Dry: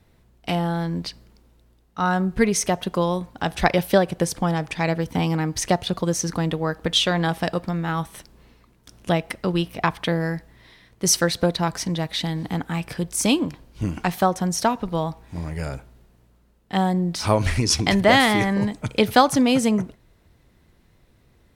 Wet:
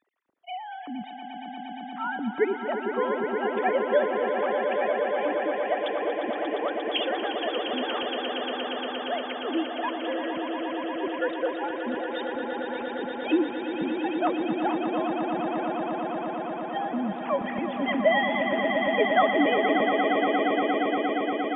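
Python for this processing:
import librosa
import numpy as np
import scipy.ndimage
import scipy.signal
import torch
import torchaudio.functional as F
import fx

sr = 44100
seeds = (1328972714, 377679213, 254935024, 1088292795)

y = fx.sine_speech(x, sr)
y = fx.air_absorb(y, sr, metres=220.0)
y = fx.echo_swell(y, sr, ms=117, loudest=8, wet_db=-8)
y = y * librosa.db_to_amplitude(-8.0)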